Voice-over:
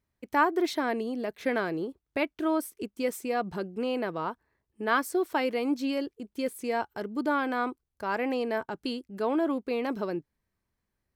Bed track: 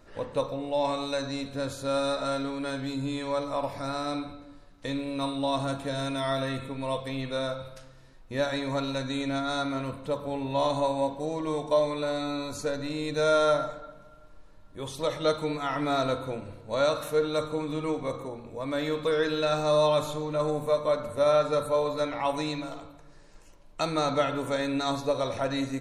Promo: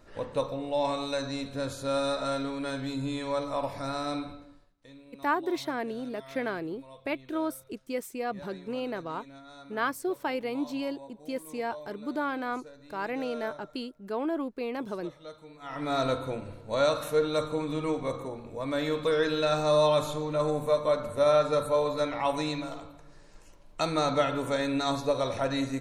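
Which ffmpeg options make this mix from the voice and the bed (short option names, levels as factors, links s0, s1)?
-filter_complex "[0:a]adelay=4900,volume=0.668[s0];[1:a]volume=8.41,afade=t=out:st=4.34:d=0.41:silence=0.11885,afade=t=in:st=15.57:d=0.48:silence=0.105925[s1];[s0][s1]amix=inputs=2:normalize=0"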